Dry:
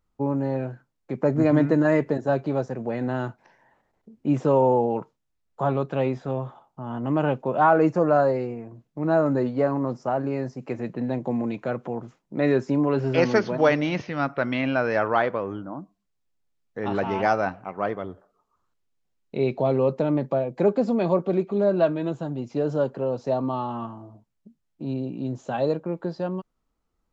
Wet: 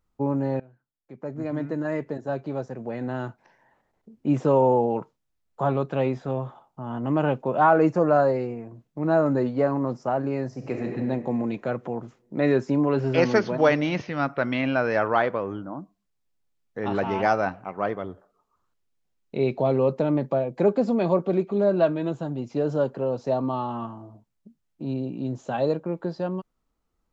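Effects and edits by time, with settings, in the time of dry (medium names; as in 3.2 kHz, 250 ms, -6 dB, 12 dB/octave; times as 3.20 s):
0.60–4.32 s: fade in, from -22 dB
10.47–10.88 s: reverb throw, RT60 2.2 s, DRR 1 dB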